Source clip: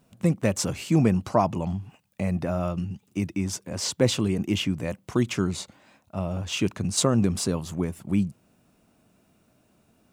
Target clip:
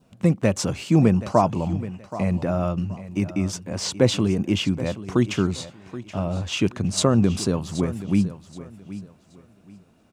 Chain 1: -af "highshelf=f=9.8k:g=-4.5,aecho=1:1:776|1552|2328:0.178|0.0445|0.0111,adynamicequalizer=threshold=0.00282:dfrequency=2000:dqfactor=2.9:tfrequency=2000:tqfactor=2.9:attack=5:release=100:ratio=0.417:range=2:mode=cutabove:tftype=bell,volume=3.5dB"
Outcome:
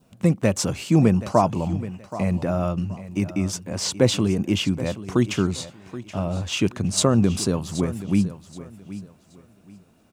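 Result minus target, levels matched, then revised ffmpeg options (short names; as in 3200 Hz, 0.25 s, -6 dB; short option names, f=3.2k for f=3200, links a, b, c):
8000 Hz band +2.5 dB
-af "highshelf=f=9.8k:g=-13.5,aecho=1:1:776|1552|2328:0.178|0.0445|0.0111,adynamicequalizer=threshold=0.00282:dfrequency=2000:dqfactor=2.9:tfrequency=2000:tqfactor=2.9:attack=5:release=100:ratio=0.417:range=2:mode=cutabove:tftype=bell,volume=3.5dB"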